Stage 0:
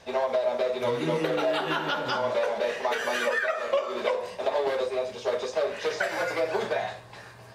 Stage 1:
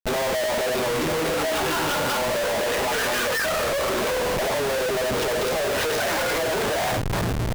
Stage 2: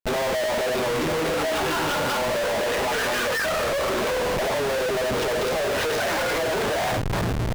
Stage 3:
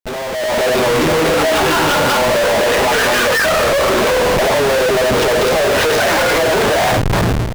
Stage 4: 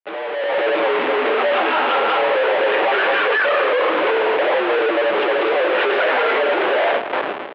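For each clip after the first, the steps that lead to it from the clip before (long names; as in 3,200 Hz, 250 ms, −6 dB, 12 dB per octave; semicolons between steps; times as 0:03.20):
in parallel at −1 dB: compressor whose output falls as the input rises −28 dBFS, ratio −0.5; on the sum: comparator with hysteresis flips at −35.5 dBFS
high-shelf EQ 6,500 Hz −5 dB
automatic gain control gain up to 10.5 dB
far-end echo of a speakerphone 170 ms, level −8 dB; single-sideband voice off tune −60 Hz 450–3,200 Hz; level −2.5 dB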